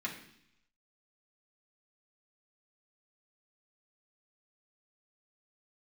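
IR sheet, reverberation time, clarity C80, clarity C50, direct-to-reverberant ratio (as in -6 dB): 0.70 s, 11.0 dB, 8.0 dB, -4.0 dB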